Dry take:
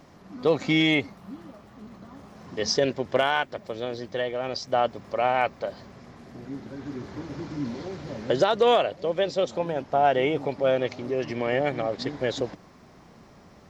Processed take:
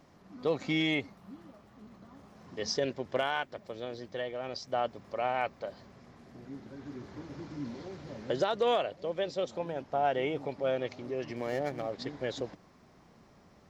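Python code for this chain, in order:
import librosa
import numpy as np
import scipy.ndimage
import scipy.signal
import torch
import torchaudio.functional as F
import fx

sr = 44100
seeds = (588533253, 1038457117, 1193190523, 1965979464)

y = fx.median_filter(x, sr, points=15, at=(11.36, 11.92))
y = F.gain(torch.from_numpy(y), -8.0).numpy()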